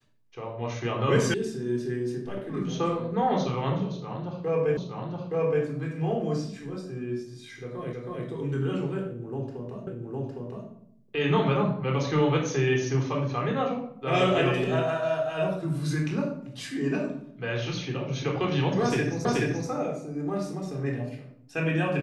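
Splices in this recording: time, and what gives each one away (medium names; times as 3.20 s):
1.34 s: sound stops dead
4.77 s: repeat of the last 0.87 s
7.93 s: repeat of the last 0.32 s
9.87 s: repeat of the last 0.81 s
19.25 s: repeat of the last 0.43 s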